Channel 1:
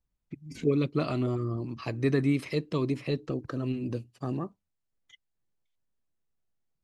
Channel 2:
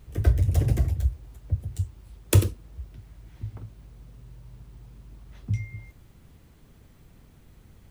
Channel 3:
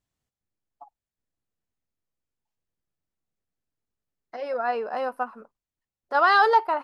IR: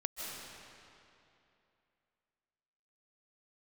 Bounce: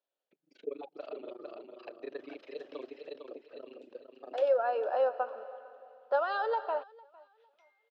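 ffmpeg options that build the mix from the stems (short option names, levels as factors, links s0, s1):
-filter_complex "[0:a]tremolo=f=25:d=1,volume=0.447,asplit=2[s0][s1];[s1]volume=0.501[s2];[1:a]highpass=900,adelay=2050,volume=0.188,asplit=2[s3][s4];[s4]volume=0.141[s5];[2:a]bandreject=f=2000:w=12,acompressor=threshold=0.0562:ratio=12,volume=0.631,asplit=4[s6][s7][s8][s9];[s7]volume=0.251[s10];[s8]volume=0.075[s11];[s9]apad=whole_len=301370[s12];[s0][s12]sidechaincompress=threshold=0.00398:ratio=8:attack=5.9:release=979[s13];[3:a]atrim=start_sample=2205[s14];[s10][s14]afir=irnorm=-1:irlink=0[s15];[s2][s5][s11]amix=inputs=3:normalize=0,aecho=0:1:454|908|1362|1816:1|0.27|0.0729|0.0197[s16];[s13][s3][s6][s15][s16]amix=inputs=5:normalize=0,highpass=f=400:w=0.5412,highpass=f=400:w=1.3066,equalizer=f=560:t=q:w=4:g=9,equalizer=f=1100:t=q:w=4:g=-6,equalizer=f=2100:t=q:w=4:g=-10,lowpass=f=3800:w=0.5412,lowpass=f=3800:w=1.3066"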